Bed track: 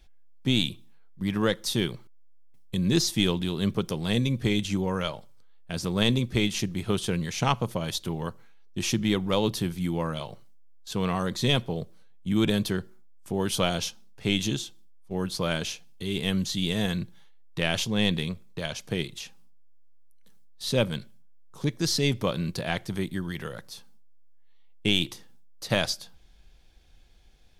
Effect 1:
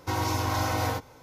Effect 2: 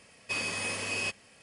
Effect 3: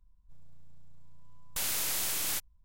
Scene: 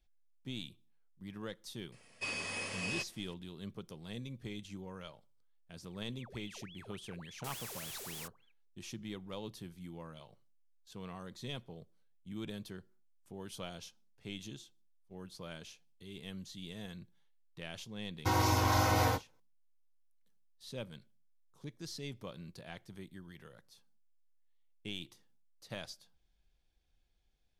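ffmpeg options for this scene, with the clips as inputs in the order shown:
-filter_complex "[0:a]volume=0.112[s0];[2:a]acrossover=split=9100[s1][s2];[s2]acompressor=threshold=0.00178:ratio=4:attack=1:release=60[s3];[s1][s3]amix=inputs=2:normalize=0[s4];[3:a]aeval=exprs='val(0)*sin(2*PI*1900*n/s+1900*0.8/3.5*sin(2*PI*3.5*n/s))':c=same[s5];[1:a]agate=range=0.0224:threshold=0.01:ratio=3:release=100:detection=peak[s6];[s4]atrim=end=1.42,asetpts=PTS-STARTPTS,volume=0.501,afade=t=in:d=0.004:c=hsin,afade=t=out:st=1.416:d=0.004:c=hsin,adelay=1920[s7];[s5]atrim=end=2.64,asetpts=PTS-STARTPTS,volume=0.282,afade=t=in:d=0.004:c=hsin,afade=t=out:st=2.636:d=0.004:c=hsin,adelay=5880[s8];[s6]atrim=end=1.22,asetpts=PTS-STARTPTS,volume=0.841,afade=t=in:d=0.004:c=hsin,afade=t=out:st=1.216:d=0.004:c=hsin,adelay=18180[s9];[s0][s7][s8][s9]amix=inputs=4:normalize=0"

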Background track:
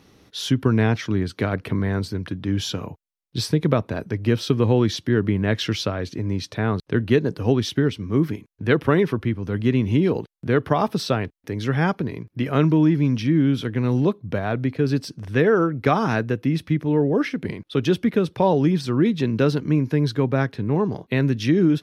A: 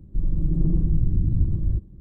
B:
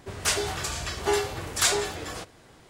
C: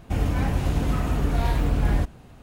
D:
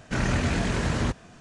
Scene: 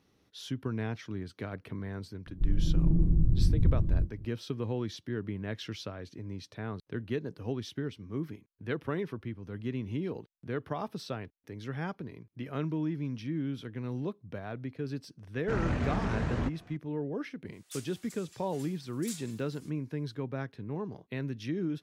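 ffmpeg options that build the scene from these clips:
-filter_complex "[0:a]volume=0.168[s0];[1:a]asplit=2[s1][s2];[s2]adelay=24,volume=0.299[s3];[s1][s3]amix=inputs=2:normalize=0[s4];[4:a]lowpass=f=1500:p=1[s5];[2:a]aderivative[s6];[s4]atrim=end=2,asetpts=PTS-STARTPTS,volume=0.631,afade=t=in:d=0.004:c=hsin,afade=t=out:st=1.996:d=0.004:c=hsin,adelay=2260[s7];[s5]atrim=end=1.4,asetpts=PTS-STARTPTS,volume=0.531,afade=t=in:d=0.004:c=hsin,afade=t=out:st=1.396:d=0.004:c=hsin,adelay=15370[s8];[s6]atrim=end=2.69,asetpts=PTS-STARTPTS,volume=0.133,afade=t=in:d=0.004:c=hsin,afade=t=out:st=2.686:d=0.004:c=hsin,adelay=17460[s9];[s0][s7][s8][s9]amix=inputs=4:normalize=0"

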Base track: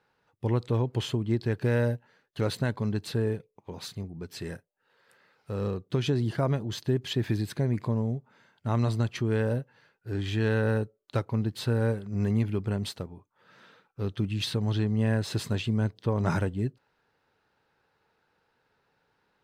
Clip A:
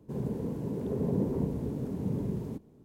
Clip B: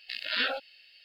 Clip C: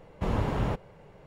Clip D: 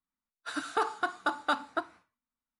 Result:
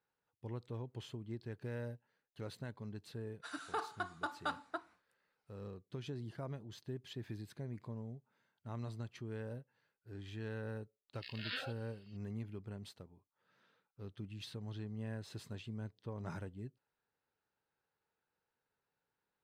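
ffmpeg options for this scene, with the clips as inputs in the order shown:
-filter_complex "[0:a]volume=0.133[s0];[4:a]atrim=end=2.59,asetpts=PTS-STARTPTS,volume=0.316,afade=t=in:d=0.004:c=hsin,afade=t=out:st=2.586:d=0.004:c=hsin,adelay=2970[s1];[2:a]atrim=end=1.04,asetpts=PTS-STARTPTS,volume=0.211,afade=t=in:d=0.004:c=hsin,afade=t=out:st=1.036:d=0.004:c=hsin,adelay=11130[s2];[s0][s1][s2]amix=inputs=3:normalize=0"

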